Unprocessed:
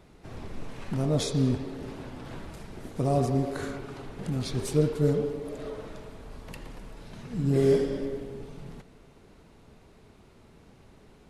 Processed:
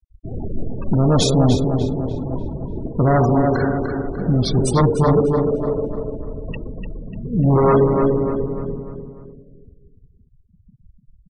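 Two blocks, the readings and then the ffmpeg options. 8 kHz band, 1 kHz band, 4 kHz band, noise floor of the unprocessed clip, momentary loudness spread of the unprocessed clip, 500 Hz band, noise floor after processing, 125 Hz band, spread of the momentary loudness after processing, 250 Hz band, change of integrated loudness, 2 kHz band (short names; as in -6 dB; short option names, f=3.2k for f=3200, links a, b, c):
+10.0 dB, +16.0 dB, +11.0 dB, -56 dBFS, 20 LU, +10.5 dB, -55 dBFS, +11.5 dB, 17 LU, +11.0 dB, +10.0 dB, +10.0 dB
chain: -filter_complex "[0:a]aeval=exprs='0.266*sin(PI/2*2.82*val(0)/0.266)':c=same,afftfilt=real='re*gte(hypot(re,im),0.0794)':imag='im*gte(hypot(re,im),0.0794)':win_size=1024:overlap=0.75,asplit=2[a][b];[b]adelay=297,lowpass=f=3.7k:p=1,volume=-6dB,asplit=2[c][d];[d]adelay=297,lowpass=f=3.7k:p=1,volume=0.45,asplit=2[e][f];[f]adelay=297,lowpass=f=3.7k:p=1,volume=0.45,asplit=2[g][h];[h]adelay=297,lowpass=f=3.7k:p=1,volume=0.45,asplit=2[i][j];[j]adelay=297,lowpass=f=3.7k:p=1,volume=0.45[k];[a][c][e][g][i][k]amix=inputs=6:normalize=0,volume=1dB"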